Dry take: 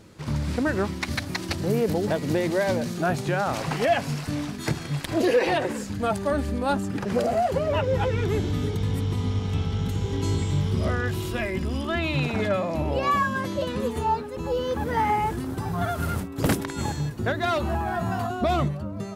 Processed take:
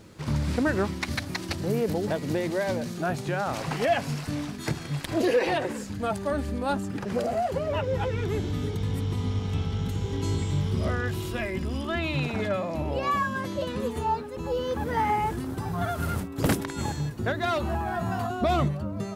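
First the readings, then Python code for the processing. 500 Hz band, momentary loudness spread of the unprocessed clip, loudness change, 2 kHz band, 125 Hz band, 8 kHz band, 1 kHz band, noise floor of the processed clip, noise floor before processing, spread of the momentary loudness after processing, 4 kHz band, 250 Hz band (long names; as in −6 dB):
−2.5 dB, 6 LU, −2.5 dB, −2.5 dB, −2.5 dB, −2.5 dB, −2.5 dB, −37 dBFS, −34 dBFS, 5 LU, −2.5 dB, −2.5 dB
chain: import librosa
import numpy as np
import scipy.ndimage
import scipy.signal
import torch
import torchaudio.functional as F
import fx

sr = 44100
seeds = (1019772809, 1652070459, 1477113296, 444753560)

y = fx.rider(x, sr, range_db=10, speed_s=2.0)
y = fx.quant_dither(y, sr, seeds[0], bits=12, dither='none')
y = y * librosa.db_to_amplitude(-3.0)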